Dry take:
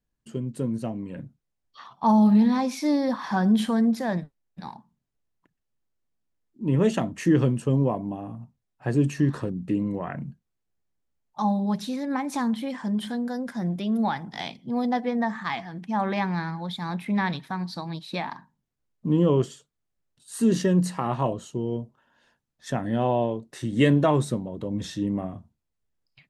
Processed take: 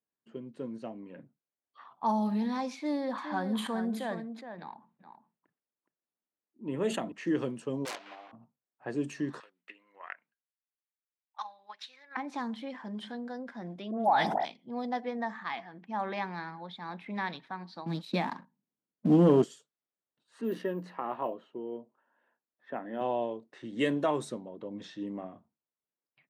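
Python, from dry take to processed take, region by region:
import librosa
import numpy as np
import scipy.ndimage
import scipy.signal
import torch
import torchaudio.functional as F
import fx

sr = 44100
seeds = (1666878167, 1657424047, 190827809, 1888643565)

y = fx.chain(x, sr, fx.peak_eq(hz=5500.0, db=-14.5, octaves=0.29),
    fx.echo_single(ms=418, db=-8.5),
    fx.sustainer(db_per_s=110.0), at=(2.76, 7.12))
y = fx.chain(y, sr, fx.block_float(bits=3),
    fx.bandpass_edges(low_hz=740.0, high_hz=4600.0),
    fx.overflow_wrap(gain_db=24.0), at=(7.85, 8.33))
y = fx.chain(y, sr, fx.cheby1_highpass(hz=1900.0, order=2),
    fx.transient(attack_db=11, sustain_db=-1), at=(9.4, 12.17))
y = fx.chain(y, sr, fx.peak_eq(hz=680.0, db=13.0, octaves=0.78),
    fx.dispersion(late='highs', ms=98.0, hz=1700.0),
    fx.sustainer(db_per_s=25.0), at=(13.91, 14.45))
y = fx.chain(y, sr, fx.peak_eq(hz=200.0, db=14.0, octaves=1.5),
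    fx.leveller(passes=1), at=(17.86, 19.44))
y = fx.chain(y, sr, fx.bandpass_edges(low_hz=210.0, high_hz=2500.0),
    fx.resample_bad(factor=3, down='none', up='hold'), at=(20.41, 23.01))
y = fx.env_lowpass(y, sr, base_hz=1900.0, full_db=-17.0)
y = scipy.signal.sosfilt(scipy.signal.butter(2, 290.0, 'highpass', fs=sr, output='sos'), y)
y = y * 10.0 ** (-6.5 / 20.0)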